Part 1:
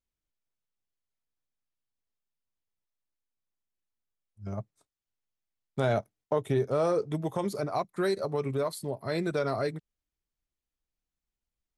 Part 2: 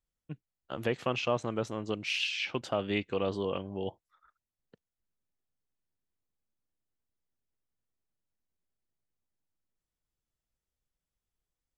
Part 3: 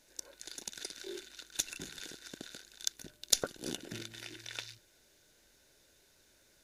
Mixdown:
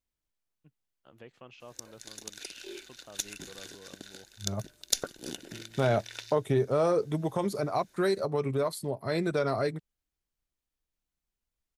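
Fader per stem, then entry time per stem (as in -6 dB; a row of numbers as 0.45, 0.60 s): +1.0, -19.5, 0.0 dB; 0.00, 0.35, 1.60 s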